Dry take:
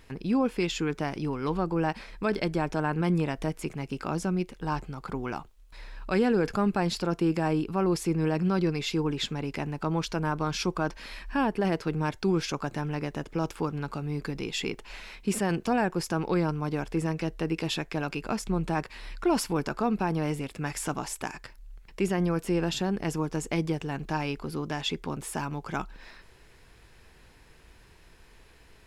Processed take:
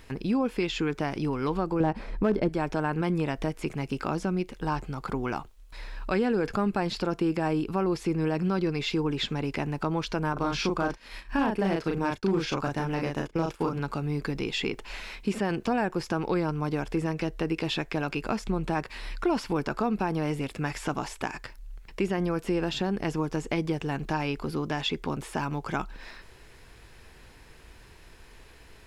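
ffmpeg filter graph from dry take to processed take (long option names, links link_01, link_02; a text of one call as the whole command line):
ffmpeg -i in.wav -filter_complex "[0:a]asettb=1/sr,asplit=3[link_01][link_02][link_03];[link_01]atrim=end=1.804[link_04];[link_02]atrim=start=1.8:end=2.49,asetpts=PTS-STARTPTS,afade=type=in:duration=0.004:curve=qsin,afade=type=out:start_time=0.686:duration=0.004:curve=qsin,tiltshelf=frequency=1300:gain=8.5,volume=13dB,asoftclip=hard,volume=-13dB[link_05];[link_03]atrim=start=2.486[link_06];[link_04][link_05]acrossfade=duration=0.004:curve1=hsin:curve2=qsin[link_07];[link_07][link_06]acrossfade=duration=0.004:curve1=qsin:curve2=hsin,asettb=1/sr,asplit=3[link_08][link_09][link_10];[link_08]atrim=end=10.334[link_11];[link_09]atrim=start=10.33:end=13.79,asetpts=PTS-STARTPTS,afade=type=in:duration=0.004:curve=qsin,afade=type=out:start_time=3.456:duration=0.004:curve=qsin,asplit=2[link_12][link_13];[link_13]adelay=36,volume=-3dB[link_14];[link_12][link_14]amix=inputs=2:normalize=0,atrim=end_sample=152586,asoftclip=type=hard:threshold=-17.5dB,agate=range=-33dB:threshold=-34dB:ratio=3:release=100:detection=peak[link_15];[link_10]atrim=start=13.786[link_16];[link_11][link_15]acrossfade=duration=0.004:curve1=hsin:curve2=qsin[link_17];[link_17][link_16]acrossfade=duration=0.004:curve1=qsin:curve2=hsin,acrossover=split=4800[link_18][link_19];[link_19]acompressor=threshold=-51dB:ratio=4:attack=1:release=60[link_20];[link_18][link_20]amix=inputs=2:normalize=0,equalizer=frequency=170:width=6.9:gain=-4,acompressor=threshold=-30dB:ratio=2,volume=4dB" out.wav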